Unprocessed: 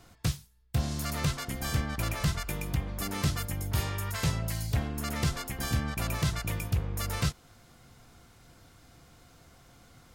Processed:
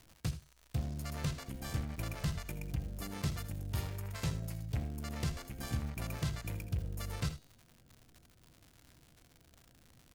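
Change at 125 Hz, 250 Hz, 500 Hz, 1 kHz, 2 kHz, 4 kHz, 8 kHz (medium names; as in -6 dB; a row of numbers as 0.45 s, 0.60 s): -6.5 dB, -7.0 dB, -8.0 dB, -10.5 dB, -10.5 dB, -10.0 dB, -10.5 dB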